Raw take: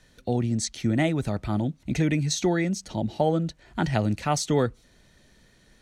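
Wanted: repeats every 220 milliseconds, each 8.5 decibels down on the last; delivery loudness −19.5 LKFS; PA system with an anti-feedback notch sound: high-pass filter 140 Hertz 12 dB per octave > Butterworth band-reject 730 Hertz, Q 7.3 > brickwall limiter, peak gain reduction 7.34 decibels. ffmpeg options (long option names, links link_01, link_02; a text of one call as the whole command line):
ffmpeg -i in.wav -af "highpass=140,asuperstop=centerf=730:order=8:qfactor=7.3,aecho=1:1:220|440|660|880:0.376|0.143|0.0543|0.0206,volume=9.5dB,alimiter=limit=-9.5dB:level=0:latency=1" out.wav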